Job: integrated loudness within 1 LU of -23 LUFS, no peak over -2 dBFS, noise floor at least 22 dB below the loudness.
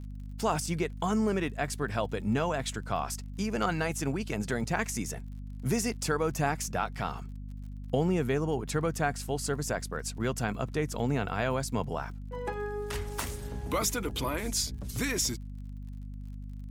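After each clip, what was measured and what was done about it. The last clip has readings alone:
ticks 45/s; hum 50 Hz; harmonics up to 250 Hz; hum level -38 dBFS; loudness -31.5 LUFS; peak -14.5 dBFS; loudness target -23.0 LUFS
-> de-click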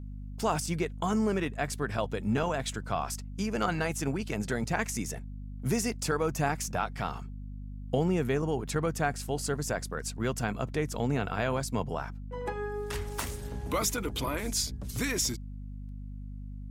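ticks 0.18/s; hum 50 Hz; harmonics up to 250 Hz; hum level -38 dBFS
-> notches 50/100/150/200/250 Hz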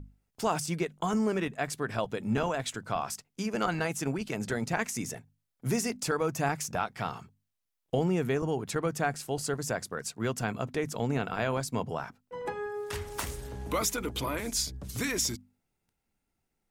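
hum none; loudness -32.0 LUFS; peak -14.5 dBFS; loudness target -23.0 LUFS
-> gain +9 dB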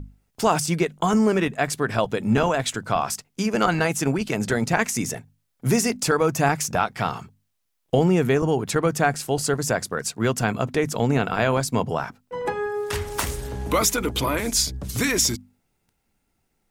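loudness -23.0 LUFS; peak -5.5 dBFS; noise floor -73 dBFS

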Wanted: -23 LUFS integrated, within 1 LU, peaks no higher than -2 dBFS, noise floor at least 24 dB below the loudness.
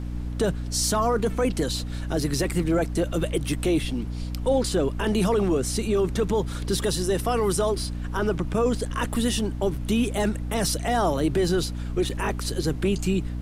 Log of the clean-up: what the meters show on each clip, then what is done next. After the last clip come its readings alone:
hum 60 Hz; harmonics up to 300 Hz; hum level -28 dBFS; noise floor -31 dBFS; noise floor target -49 dBFS; loudness -25.0 LUFS; peak -12.0 dBFS; loudness target -23.0 LUFS
-> notches 60/120/180/240/300 Hz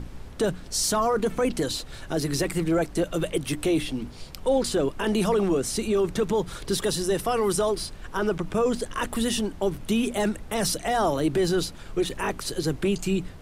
hum none; noise floor -41 dBFS; noise floor target -50 dBFS
-> noise print and reduce 9 dB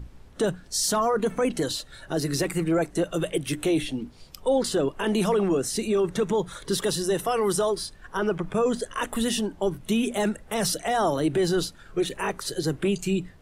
noise floor -49 dBFS; noise floor target -50 dBFS
-> noise print and reduce 6 dB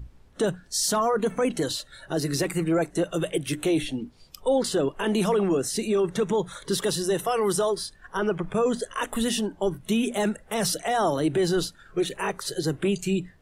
noise floor -54 dBFS; loudness -26.0 LUFS; peak -13.5 dBFS; loudness target -23.0 LUFS
-> gain +3 dB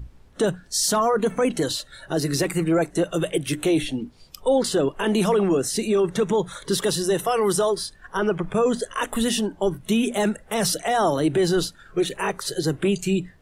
loudness -23.0 LUFS; peak -10.5 dBFS; noise floor -51 dBFS

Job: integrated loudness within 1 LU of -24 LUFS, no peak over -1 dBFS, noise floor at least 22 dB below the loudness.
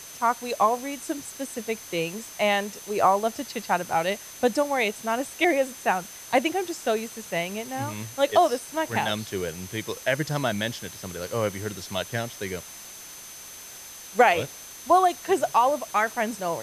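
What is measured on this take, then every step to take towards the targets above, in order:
steady tone 6200 Hz; tone level -44 dBFS; noise floor -43 dBFS; noise floor target -48 dBFS; loudness -26.0 LUFS; peak -5.5 dBFS; loudness target -24.0 LUFS
-> notch 6200 Hz, Q 30; denoiser 6 dB, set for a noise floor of -43 dBFS; gain +2 dB

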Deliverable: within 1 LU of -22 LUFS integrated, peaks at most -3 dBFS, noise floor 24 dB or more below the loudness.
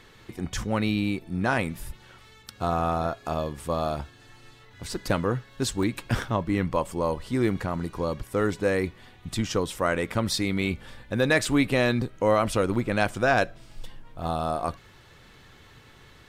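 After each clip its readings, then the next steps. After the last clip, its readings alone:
dropouts 2; longest dropout 1.1 ms; loudness -27.0 LUFS; peak -9.5 dBFS; loudness target -22.0 LUFS
-> interpolate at 5.83/11.48, 1.1 ms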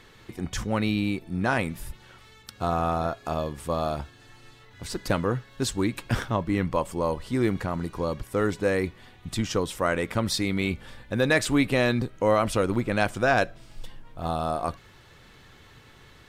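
dropouts 0; loudness -27.0 LUFS; peak -9.5 dBFS; loudness target -22.0 LUFS
-> gain +5 dB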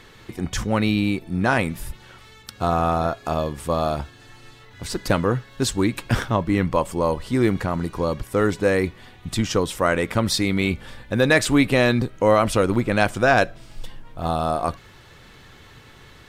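loudness -22.0 LUFS; peak -4.5 dBFS; noise floor -48 dBFS

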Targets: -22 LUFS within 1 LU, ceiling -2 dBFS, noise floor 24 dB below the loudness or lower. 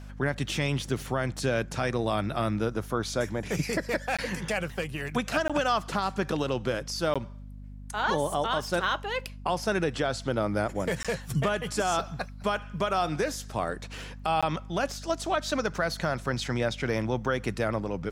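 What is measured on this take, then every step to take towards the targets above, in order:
dropouts 5; longest dropout 16 ms; hum 50 Hz; harmonics up to 250 Hz; hum level -40 dBFS; loudness -29.5 LUFS; peak -14.5 dBFS; loudness target -22.0 LUFS
-> interpolate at 4.17/5.48/7.14/11.03/14.41, 16 ms; de-hum 50 Hz, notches 5; gain +7.5 dB

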